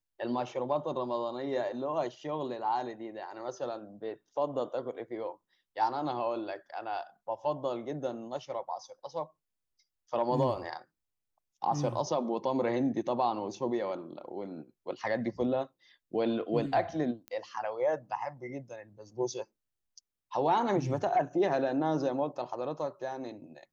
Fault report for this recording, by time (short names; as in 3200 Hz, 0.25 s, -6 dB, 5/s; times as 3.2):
17.28 pop -26 dBFS